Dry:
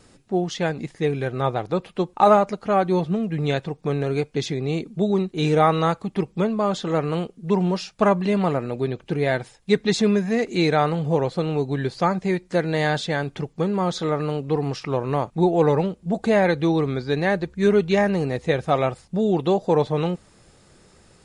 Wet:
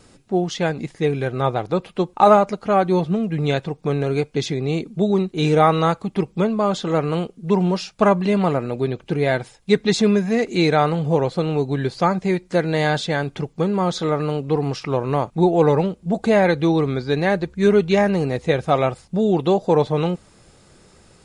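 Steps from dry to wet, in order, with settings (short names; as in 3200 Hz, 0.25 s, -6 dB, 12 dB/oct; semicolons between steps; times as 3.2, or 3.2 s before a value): notch 1800 Hz, Q 22; gain +2.5 dB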